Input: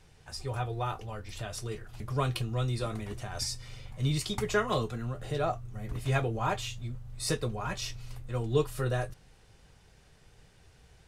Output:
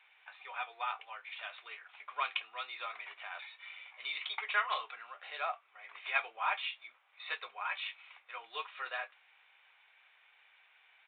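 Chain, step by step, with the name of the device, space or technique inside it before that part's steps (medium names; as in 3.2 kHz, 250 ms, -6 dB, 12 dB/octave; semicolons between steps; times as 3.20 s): musical greeting card (resampled via 8 kHz; high-pass 880 Hz 24 dB/octave; peaking EQ 2.3 kHz +10.5 dB 0.26 oct)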